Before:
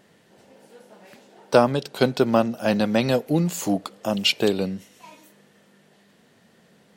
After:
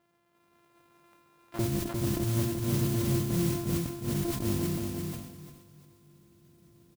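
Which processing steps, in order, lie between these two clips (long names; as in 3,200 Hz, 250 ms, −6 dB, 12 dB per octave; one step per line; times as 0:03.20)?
samples sorted by size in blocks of 128 samples
spectral tilt −4.5 dB per octave
transient designer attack −11 dB, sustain +1 dB
downward compressor 2 to 1, threshold −19 dBFS, peak gain reduction 7.5 dB
hard clipping −14 dBFS, distortion −17 dB
resonant band-pass 2,500 Hz, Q 0.57, from 0:01.59 200 Hz
noise that follows the level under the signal 12 dB
repeating echo 352 ms, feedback 23%, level −4 dB
four-comb reverb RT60 3.9 s, combs from 30 ms, DRR 19 dB
level that may fall only so fast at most 57 dB per second
level −8 dB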